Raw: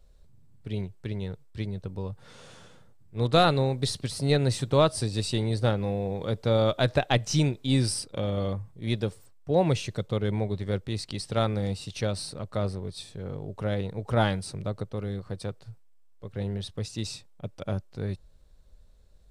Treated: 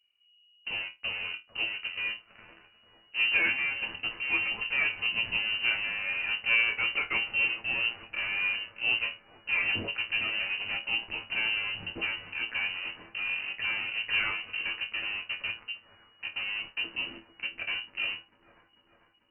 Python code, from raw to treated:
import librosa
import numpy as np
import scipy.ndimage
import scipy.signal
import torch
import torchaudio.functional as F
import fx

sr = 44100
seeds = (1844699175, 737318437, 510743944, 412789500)

p1 = fx.low_shelf(x, sr, hz=79.0, db=-10.0)
p2 = fx.fuzz(p1, sr, gain_db=45.0, gate_db=-45.0)
p3 = p1 + (p2 * librosa.db_to_amplitude(-7.0))
p4 = fx.vibrato(p3, sr, rate_hz=1.4, depth_cents=77.0)
p5 = fx.resonator_bank(p4, sr, root=39, chord='fifth', decay_s=0.21)
p6 = p5 + fx.echo_wet_highpass(p5, sr, ms=445, feedback_pct=64, hz=1800.0, wet_db=-12.0, dry=0)
p7 = fx.freq_invert(p6, sr, carrier_hz=2900)
y = p7 * librosa.db_to_amplitude(-2.5)